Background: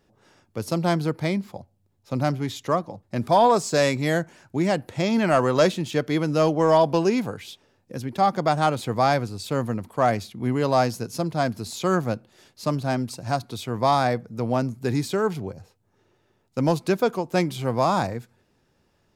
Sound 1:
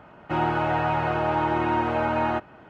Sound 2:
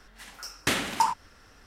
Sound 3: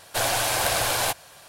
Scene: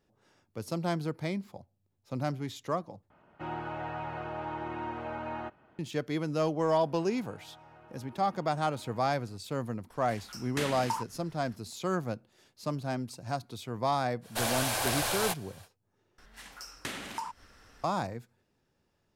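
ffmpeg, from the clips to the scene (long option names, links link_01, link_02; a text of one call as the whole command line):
ffmpeg -i bed.wav -i cue0.wav -i cue1.wav -i cue2.wav -filter_complex "[1:a]asplit=2[link_01][link_02];[2:a]asplit=2[link_03][link_04];[0:a]volume=-9dB[link_05];[link_02]acompressor=threshold=-38dB:ratio=6:attack=3.2:release=140:knee=1:detection=peak[link_06];[link_03]alimiter=limit=-16dB:level=0:latency=1:release=225[link_07];[link_04]acompressor=threshold=-40dB:ratio=2:attack=6.5:release=200:knee=1:detection=peak[link_08];[link_05]asplit=3[link_09][link_10][link_11];[link_09]atrim=end=3.104[link_12];[link_01]atrim=end=2.69,asetpts=PTS-STARTPTS,volume=-13.5dB[link_13];[link_10]atrim=start=5.786:end=16.184[link_14];[link_08]atrim=end=1.66,asetpts=PTS-STARTPTS,volume=-2.5dB[link_15];[link_11]atrim=start=17.836[link_16];[link_06]atrim=end=2.69,asetpts=PTS-STARTPTS,volume=-15dB,afade=type=in:duration=0.004:curve=hsin,afade=type=out:start_time=2.686:duration=0.004:curve=hsin,adelay=6690[link_17];[link_07]atrim=end=1.66,asetpts=PTS-STARTPTS,volume=-5.5dB,afade=type=in:duration=0.004:curve=hsin,afade=type=out:start_time=1.656:duration=0.004:curve=hsin,adelay=9900[link_18];[3:a]atrim=end=1.48,asetpts=PTS-STARTPTS,volume=-7dB,afade=type=in:duration=0.05,afade=type=out:start_time=1.43:duration=0.05,adelay=14210[link_19];[link_12][link_13]acrossfade=duration=0.004:curve1=hsin:curve2=hsin[link_20];[link_20][link_14]acrossfade=duration=0.004:curve1=hsin:curve2=hsin[link_21];[link_21][link_15]acrossfade=duration=0.004:curve1=hsin:curve2=hsin[link_22];[link_22][link_16]acrossfade=duration=0.004:curve1=hsin:curve2=hsin[link_23];[link_23][link_17][link_18][link_19]amix=inputs=4:normalize=0" out.wav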